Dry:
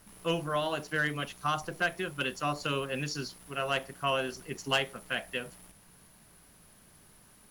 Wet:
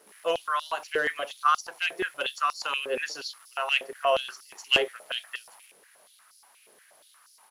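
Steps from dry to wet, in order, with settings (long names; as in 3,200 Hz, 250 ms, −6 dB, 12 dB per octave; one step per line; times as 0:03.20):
downsampling to 32,000 Hz
high-pass on a step sequencer 8.4 Hz 430–5,000 Hz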